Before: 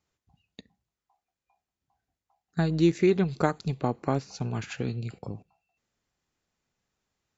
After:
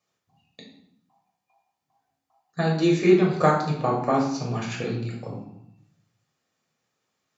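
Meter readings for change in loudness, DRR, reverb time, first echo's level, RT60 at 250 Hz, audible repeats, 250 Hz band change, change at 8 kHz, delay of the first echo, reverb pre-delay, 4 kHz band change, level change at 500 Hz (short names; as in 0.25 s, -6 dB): +5.0 dB, -2.0 dB, 0.70 s, none, 1.0 s, none, +4.0 dB, n/a, none, 3 ms, +5.5 dB, +5.5 dB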